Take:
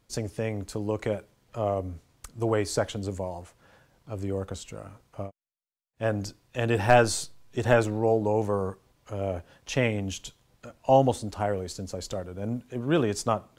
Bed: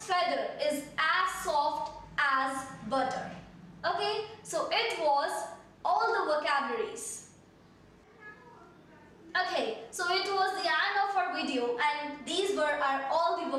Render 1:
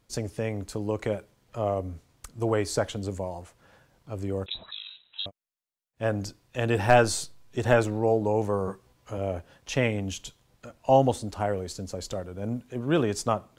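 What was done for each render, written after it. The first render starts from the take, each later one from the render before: 4.46–5.26 inverted band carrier 3900 Hz; 8.66–9.18 doubler 16 ms -4 dB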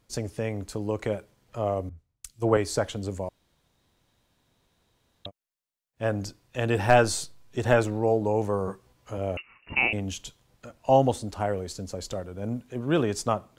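1.89–2.57 three-band expander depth 100%; 3.29–5.25 room tone; 9.37–9.93 inverted band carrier 2800 Hz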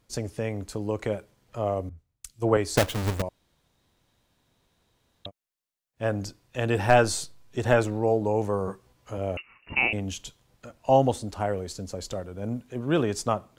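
2.77–3.22 half-waves squared off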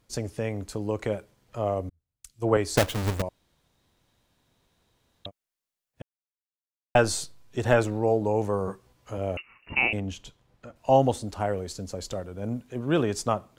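1.9–2.56 fade in; 6.02–6.95 mute; 10–10.76 high shelf 4200 Hz -11.5 dB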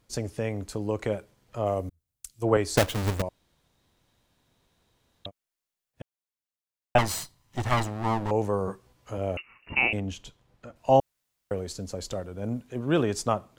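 1.66–2.43 high shelf 6000 Hz +8.5 dB; 6.98–8.31 minimum comb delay 1 ms; 11–11.51 room tone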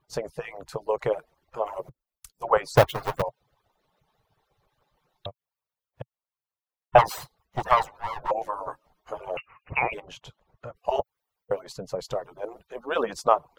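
median-filter separation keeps percussive; graphic EQ 125/250/500/1000/8000 Hz +9/-10/+6/+9/-8 dB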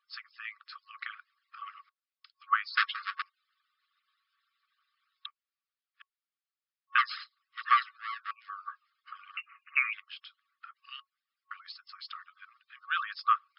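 FFT band-pass 1100–5300 Hz; dynamic EQ 1600 Hz, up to +3 dB, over -45 dBFS, Q 4.3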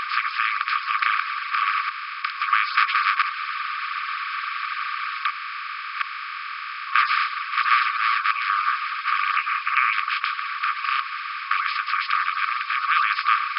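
per-bin compression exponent 0.2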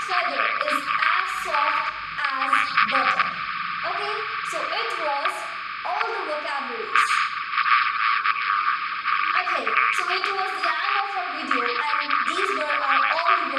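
add bed 0 dB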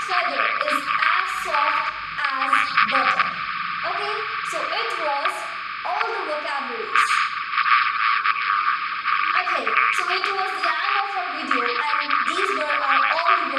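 gain +1.5 dB; limiter -2 dBFS, peak gain reduction 1.5 dB

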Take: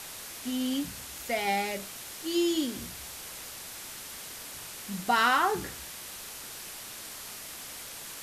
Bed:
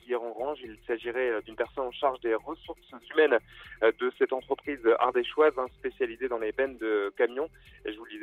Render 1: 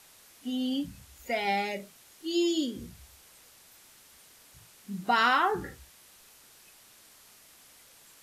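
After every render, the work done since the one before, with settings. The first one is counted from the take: noise print and reduce 14 dB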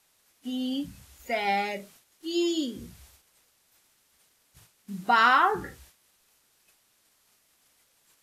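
gate -54 dBFS, range -11 dB; dynamic EQ 1200 Hz, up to +5 dB, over -39 dBFS, Q 1.1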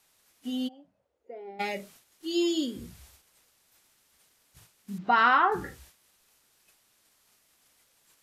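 0.67–1.59 band-pass 800 Hz -> 320 Hz, Q 6.6; 2.33–2.85 notch 6000 Hz, Q 9.2; 4.98–5.52 air absorption 210 m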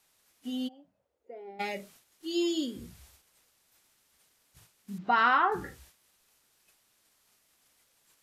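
gain -2.5 dB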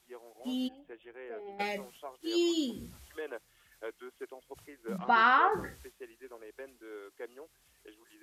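add bed -18.5 dB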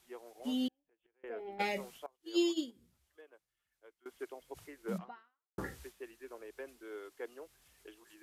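0.68–1.24 flipped gate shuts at -48 dBFS, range -29 dB; 2.06–4.06 upward expander 2.5:1, over -41 dBFS; 4.97–5.58 fade out exponential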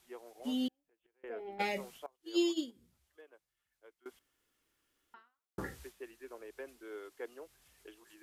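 4.19–5.14 room tone

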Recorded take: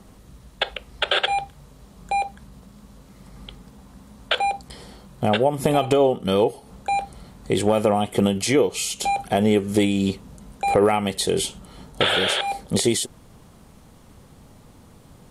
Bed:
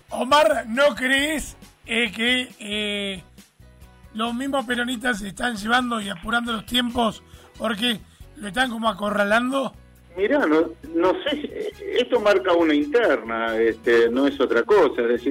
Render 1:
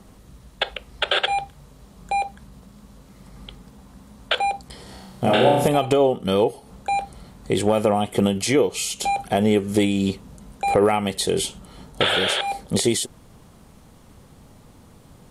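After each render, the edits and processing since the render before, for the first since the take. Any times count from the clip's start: 4.83–5.68 flutter echo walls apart 5.4 m, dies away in 0.88 s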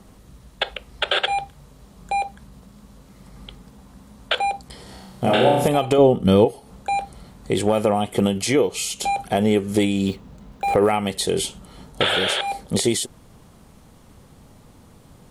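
5.98–6.45 low shelf 320 Hz +11.5 dB; 10.07–10.89 median filter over 5 samples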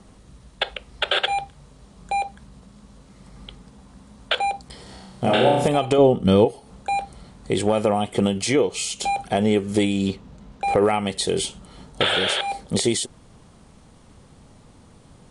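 elliptic low-pass 9600 Hz, stop band 60 dB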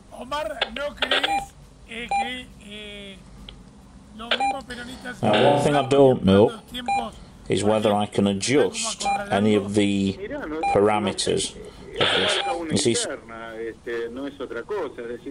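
add bed -12 dB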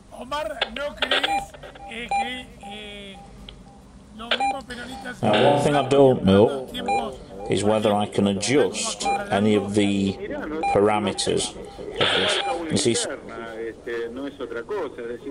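narrowing echo 0.516 s, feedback 56%, band-pass 490 Hz, level -15 dB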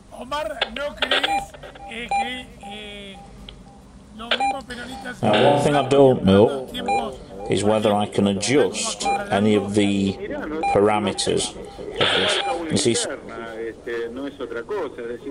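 gain +1.5 dB

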